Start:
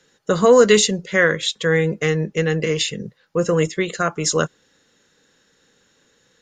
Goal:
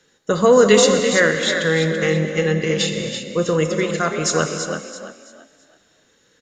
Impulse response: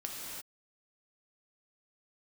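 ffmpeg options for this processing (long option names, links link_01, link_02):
-filter_complex "[0:a]asplit=5[link_01][link_02][link_03][link_04][link_05];[link_02]adelay=333,afreqshift=37,volume=-8dB[link_06];[link_03]adelay=666,afreqshift=74,volume=-18.2dB[link_07];[link_04]adelay=999,afreqshift=111,volume=-28.3dB[link_08];[link_05]adelay=1332,afreqshift=148,volume=-38.5dB[link_09];[link_01][link_06][link_07][link_08][link_09]amix=inputs=5:normalize=0,asplit=2[link_10][link_11];[1:a]atrim=start_sample=2205[link_12];[link_11][link_12]afir=irnorm=-1:irlink=0,volume=-2.5dB[link_13];[link_10][link_13]amix=inputs=2:normalize=0,volume=-4dB"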